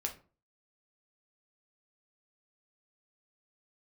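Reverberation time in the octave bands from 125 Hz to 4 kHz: 0.45 s, 0.45 s, 0.40 s, 0.35 s, 0.30 s, 0.25 s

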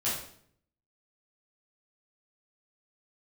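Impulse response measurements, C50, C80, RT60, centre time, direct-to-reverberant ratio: 3.0 dB, 7.0 dB, 0.60 s, 47 ms, -9.5 dB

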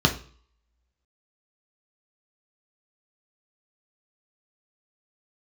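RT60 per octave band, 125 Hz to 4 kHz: 0.55 s, 0.45 s, 0.45 s, 0.50 s, 0.45 s, 0.45 s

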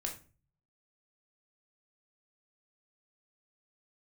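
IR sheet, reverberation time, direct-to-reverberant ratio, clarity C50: 0.35 s, 1.0 dB, 9.5 dB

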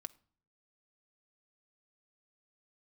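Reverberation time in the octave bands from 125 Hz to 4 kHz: 0.85 s, 0.70 s, 0.50 s, 0.50 s, 0.40 s, 0.35 s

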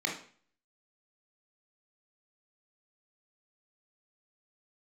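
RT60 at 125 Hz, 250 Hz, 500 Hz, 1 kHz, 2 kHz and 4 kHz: 0.50 s, 0.50 s, 0.45 s, 0.45 s, 0.45 s, 0.45 s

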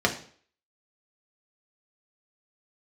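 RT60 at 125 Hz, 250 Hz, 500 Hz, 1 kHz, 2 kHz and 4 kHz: 0.50 s, 0.50 s, 0.50 s, 0.50 s, 0.50 s, 0.50 s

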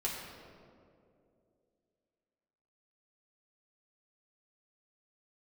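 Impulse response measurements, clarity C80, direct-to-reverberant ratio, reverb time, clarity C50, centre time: 3.0 dB, -5.0 dB, 2.5 s, 1.5 dB, 89 ms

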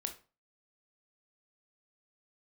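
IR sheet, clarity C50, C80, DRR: 11.5 dB, 18.0 dB, 5.0 dB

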